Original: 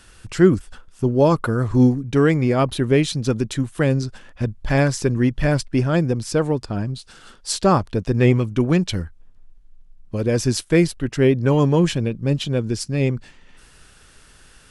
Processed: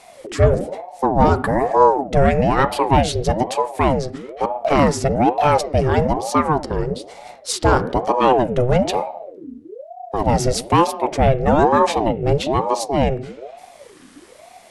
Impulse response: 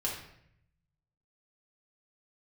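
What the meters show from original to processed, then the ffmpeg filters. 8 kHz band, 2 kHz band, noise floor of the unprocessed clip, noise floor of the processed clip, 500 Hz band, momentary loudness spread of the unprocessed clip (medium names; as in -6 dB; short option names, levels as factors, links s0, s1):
+1.0 dB, +1.0 dB, -50 dBFS, -45 dBFS, +3.0 dB, 10 LU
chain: -filter_complex "[0:a]acontrast=70,asplit=2[s0][s1];[1:a]atrim=start_sample=2205,asetrate=52920,aresample=44100,lowpass=2100[s2];[s1][s2]afir=irnorm=-1:irlink=0,volume=0.299[s3];[s0][s3]amix=inputs=2:normalize=0,aeval=exprs='val(0)*sin(2*PI*490*n/s+490*0.5/1.1*sin(2*PI*1.1*n/s))':c=same,volume=0.75"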